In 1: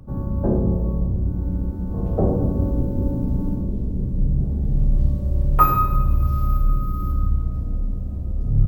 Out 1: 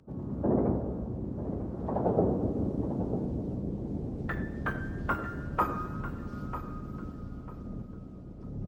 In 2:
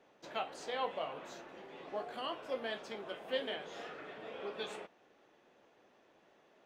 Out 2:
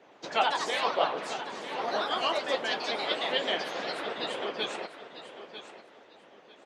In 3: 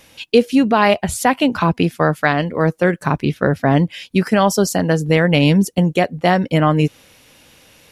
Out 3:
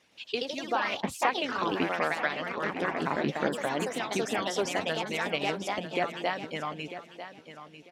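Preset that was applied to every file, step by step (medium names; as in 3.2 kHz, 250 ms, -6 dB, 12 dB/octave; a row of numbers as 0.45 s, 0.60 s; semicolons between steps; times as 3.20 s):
wow and flutter 27 cents; band-pass 130–6300 Hz; harmonic-percussive split harmonic -17 dB; ever faster or slower copies 114 ms, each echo +2 st, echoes 3; feedback delay 946 ms, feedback 22%, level -12 dB; peak normalisation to -12 dBFS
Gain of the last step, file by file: -1.5 dB, +14.5 dB, -11.0 dB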